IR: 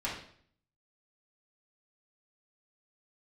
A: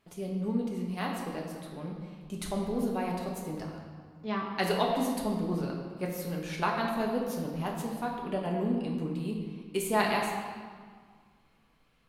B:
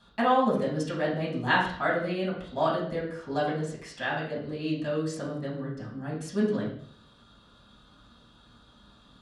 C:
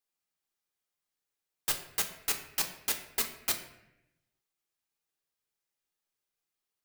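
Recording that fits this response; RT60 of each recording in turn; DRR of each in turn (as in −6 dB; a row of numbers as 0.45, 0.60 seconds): B; 1.8, 0.55, 0.85 seconds; −1.5, −7.0, 3.5 decibels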